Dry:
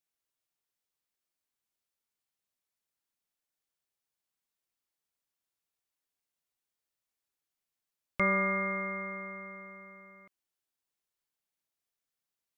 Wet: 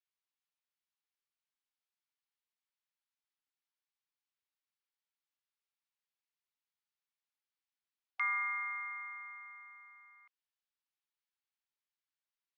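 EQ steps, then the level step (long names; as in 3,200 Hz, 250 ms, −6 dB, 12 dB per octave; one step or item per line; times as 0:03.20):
linear-phase brick-wall high-pass 760 Hz
high-frequency loss of the air 220 metres
high-shelf EQ 2,300 Hz +10.5 dB
−6.5 dB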